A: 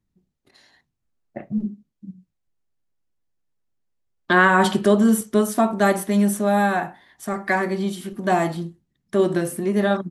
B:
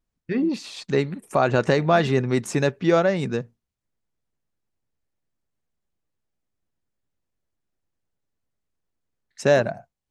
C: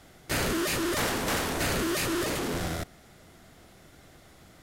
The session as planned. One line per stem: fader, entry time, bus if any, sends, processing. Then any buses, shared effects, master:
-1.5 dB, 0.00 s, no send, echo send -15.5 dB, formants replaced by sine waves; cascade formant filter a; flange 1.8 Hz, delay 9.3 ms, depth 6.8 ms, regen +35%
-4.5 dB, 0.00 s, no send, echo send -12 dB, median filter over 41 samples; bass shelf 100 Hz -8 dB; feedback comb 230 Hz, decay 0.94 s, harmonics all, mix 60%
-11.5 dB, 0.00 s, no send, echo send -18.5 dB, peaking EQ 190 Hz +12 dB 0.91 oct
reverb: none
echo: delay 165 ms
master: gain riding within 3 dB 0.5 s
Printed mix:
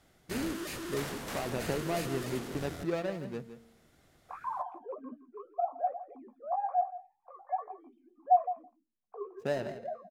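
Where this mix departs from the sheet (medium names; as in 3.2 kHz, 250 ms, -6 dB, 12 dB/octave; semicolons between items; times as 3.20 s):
stem C: missing peaking EQ 190 Hz +12 dB 0.91 oct; master: missing gain riding within 3 dB 0.5 s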